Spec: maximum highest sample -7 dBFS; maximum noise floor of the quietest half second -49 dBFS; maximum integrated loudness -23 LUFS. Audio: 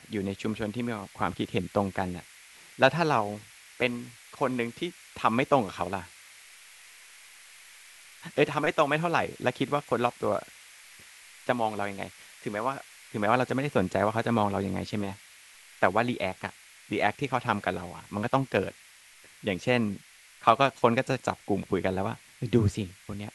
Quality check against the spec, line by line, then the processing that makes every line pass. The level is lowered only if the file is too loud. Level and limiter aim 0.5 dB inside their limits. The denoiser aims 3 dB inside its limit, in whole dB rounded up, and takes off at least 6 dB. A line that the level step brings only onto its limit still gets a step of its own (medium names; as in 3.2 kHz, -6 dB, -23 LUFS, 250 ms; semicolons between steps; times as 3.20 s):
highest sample -4.0 dBFS: fail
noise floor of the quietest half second -54 dBFS: pass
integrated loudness -28.5 LUFS: pass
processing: peak limiter -7.5 dBFS